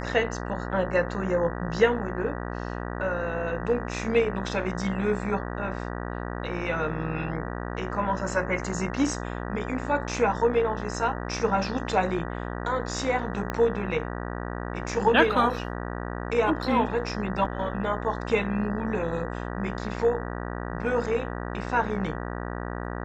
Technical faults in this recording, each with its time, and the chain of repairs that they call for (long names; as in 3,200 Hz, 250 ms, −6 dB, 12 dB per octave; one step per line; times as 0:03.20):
mains buzz 60 Hz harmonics 32 −33 dBFS
0:13.50: click −15 dBFS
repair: click removal
hum removal 60 Hz, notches 32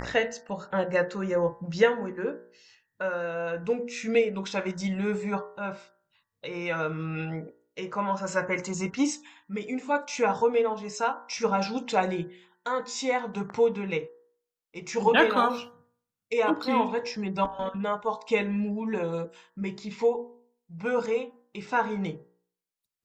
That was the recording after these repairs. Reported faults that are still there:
0:13.50: click